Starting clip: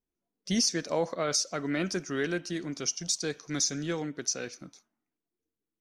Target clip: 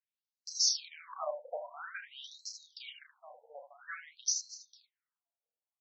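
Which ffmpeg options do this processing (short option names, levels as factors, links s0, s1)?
-af "aecho=1:1:32|78:0.562|0.447,afftfilt=real='re*between(b*sr/1024,650*pow(5700/650,0.5+0.5*sin(2*PI*0.5*pts/sr))/1.41,650*pow(5700/650,0.5+0.5*sin(2*PI*0.5*pts/sr))*1.41)':imag='im*between(b*sr/1024,650*pow(5700/650,0.5+0.5*sin(2*PI*0.5*pts/sr))/1.41,650*pow(5700/650,0.5+0.5*sin(2*PI*0.5*pts/sr))*1.41)':win_size=1024:overlap=0.75,volume=0.841"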